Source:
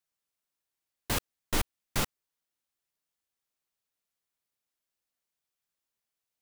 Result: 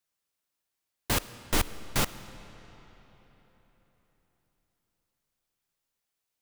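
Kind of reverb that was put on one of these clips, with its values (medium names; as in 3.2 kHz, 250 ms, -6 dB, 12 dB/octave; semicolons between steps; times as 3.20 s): algorithmic reverb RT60 4.2 s, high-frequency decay 0.75×, pre-delay 20 ms, DRR 14 dB; trim +3 dB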